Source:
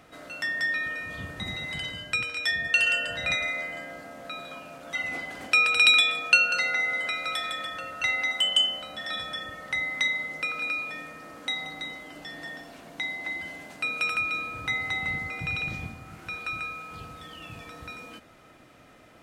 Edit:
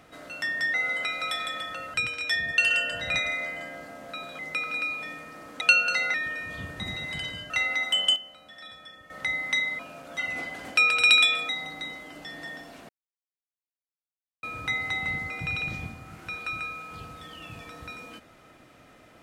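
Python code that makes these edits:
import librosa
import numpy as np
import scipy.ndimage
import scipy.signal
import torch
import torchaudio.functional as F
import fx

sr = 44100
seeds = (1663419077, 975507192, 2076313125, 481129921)

y = fx.edit(x, sr, fx.swap(start_s=0.74, length_s=1.36, other_s=6.78, other_length_s=1.2),
    fx.swap(start_s=4.55, length_s=1.7, other_s=10.27, other_length_s=1.22),
    fx.fade_down_up(start_s=8.5, length_s=1.22, db=-12.0, fade_s=0.14, curve='log'),
    fx.silence(start_s=12.89, length_s=1.54), tone=tone)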